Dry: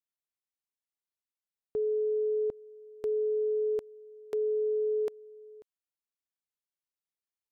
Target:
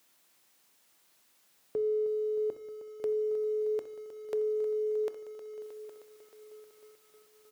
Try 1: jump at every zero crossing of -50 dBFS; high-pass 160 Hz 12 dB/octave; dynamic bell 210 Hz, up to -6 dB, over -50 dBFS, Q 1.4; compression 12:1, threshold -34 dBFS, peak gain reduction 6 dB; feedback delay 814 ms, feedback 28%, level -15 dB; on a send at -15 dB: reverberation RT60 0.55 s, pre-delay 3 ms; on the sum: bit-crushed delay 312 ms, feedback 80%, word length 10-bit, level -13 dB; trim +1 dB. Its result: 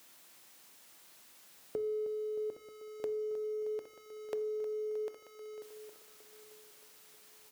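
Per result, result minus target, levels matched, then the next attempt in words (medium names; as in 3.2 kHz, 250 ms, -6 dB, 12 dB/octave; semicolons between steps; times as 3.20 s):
compression: peak gain reduction +6 dB; jump at every zero crossing: distortion +8 dB
jump at every zero crossing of -50 dBFS; high-pass 160 Hz 12 dB/octave; dynamic bell 210 Hz, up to -6 dB, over -50 dBFS, Q 1.4; feedback delay 814 ms, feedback 28%, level -15 dB; on a send at -15 dB: reverberation RT60 0.55 s, pre-delay 3 ms; on the sum: bit-crushed delay 312 ms, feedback 80%, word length 10-bit, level -13 dB; trim +1 dB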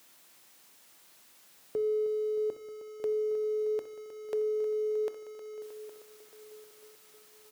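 jump at every zero crossing: distortion +8 dB
jump at every zero crossing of -58 dBFS; high-pass 160 Hz 12 dB/octave; dynamic bell 210 Hz, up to -6 dB, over -50 dBFS, Q 1.4; feedback delay 814 ms, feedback 28%, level -15 dB; on a send at -15 dB: reverberation RT60 0.55 s, pre-delay 3 ms; on the sum: bit-crushed delay 312 ms, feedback 80%, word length 10-bit, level -13 dB; trim +1 dB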